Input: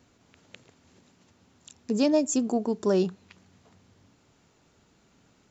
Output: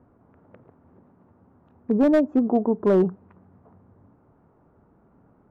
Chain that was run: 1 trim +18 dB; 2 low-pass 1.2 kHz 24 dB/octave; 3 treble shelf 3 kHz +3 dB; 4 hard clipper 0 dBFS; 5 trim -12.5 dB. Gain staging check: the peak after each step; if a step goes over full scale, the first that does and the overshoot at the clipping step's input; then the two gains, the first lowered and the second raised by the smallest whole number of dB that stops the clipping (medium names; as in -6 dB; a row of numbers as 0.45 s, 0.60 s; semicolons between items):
+6.0 dBFS, +5.5 dBFS, +5.5 dBFS, 0.0 dBFS, -12.5 dBFS; step 1, 5.5 dB; step 1 +12 dB, step 5 -6.5 dB